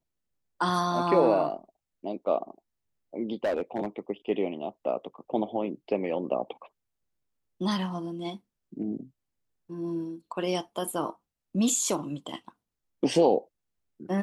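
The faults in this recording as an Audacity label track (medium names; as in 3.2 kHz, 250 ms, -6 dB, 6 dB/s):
3.440000	3.990000	clipped -23 dBFS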